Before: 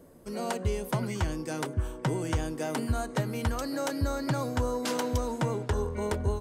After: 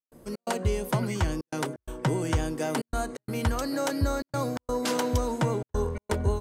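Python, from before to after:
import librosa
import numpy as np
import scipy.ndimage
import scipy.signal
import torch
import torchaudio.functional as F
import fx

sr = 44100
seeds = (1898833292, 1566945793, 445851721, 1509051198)

y = fx.step_gate(x, sr, bpm=128, pattern='.xx.xxxxxxxx', floor_db=-60.0, edge_ms=4.5)
y = F.gain(torch.from_numpy(y), 3.0).numpy()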